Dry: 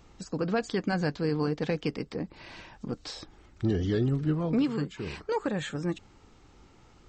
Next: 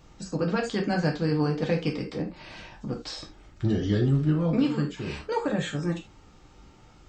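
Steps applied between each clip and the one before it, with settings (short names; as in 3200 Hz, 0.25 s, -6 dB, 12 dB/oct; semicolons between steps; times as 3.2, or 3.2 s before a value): non-linear reverb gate 0.11 s falling, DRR 0.5 dB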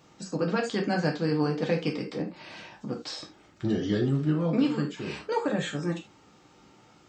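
HPF 160 Hz 12 dB/oct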